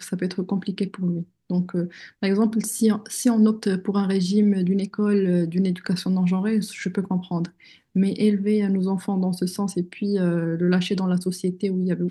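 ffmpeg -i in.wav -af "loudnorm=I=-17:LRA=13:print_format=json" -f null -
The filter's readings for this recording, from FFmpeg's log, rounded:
"input_i" : "-23.4",
"input_tp" : "-8.2",
"input_lra" : "2.4",
"input_thresh" : "-33.4",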